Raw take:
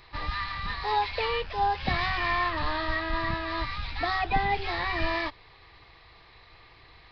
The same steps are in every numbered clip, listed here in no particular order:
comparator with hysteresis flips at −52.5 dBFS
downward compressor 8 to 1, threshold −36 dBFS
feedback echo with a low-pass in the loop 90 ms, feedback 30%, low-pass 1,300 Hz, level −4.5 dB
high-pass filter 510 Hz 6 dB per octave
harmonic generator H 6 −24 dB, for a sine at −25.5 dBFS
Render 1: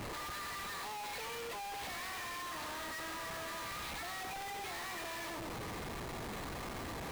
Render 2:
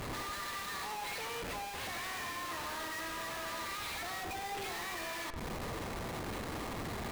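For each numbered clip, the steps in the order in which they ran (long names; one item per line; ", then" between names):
harmonic generator, then feedback echo with a low-pass in the loop, then downward compressor, then high-pass filter, then comparator with hysteresis
high-pass filter, then downward compressor, then harmonic generator, then comparator with hysteresis, then feedback echo with a low-pass in the loop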